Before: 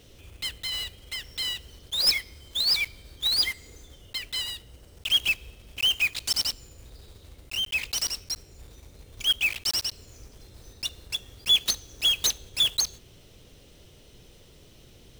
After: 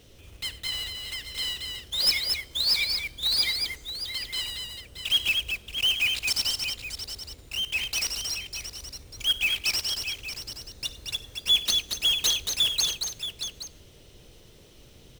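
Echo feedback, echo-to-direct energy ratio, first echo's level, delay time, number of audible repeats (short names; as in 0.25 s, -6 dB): no steady repeat, -3.0 dB, -18.0 dB, 55 ms, 5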